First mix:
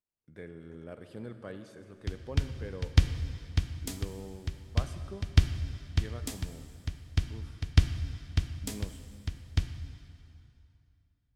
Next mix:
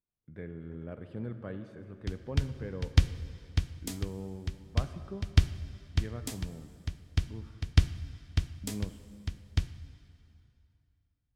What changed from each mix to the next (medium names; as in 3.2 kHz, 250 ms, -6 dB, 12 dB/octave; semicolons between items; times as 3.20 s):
speech: add tone controls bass +7 dB, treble -15 dB; background: send -6.0 dB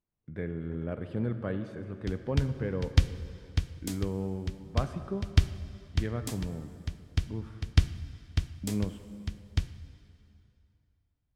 speech +7.0 dB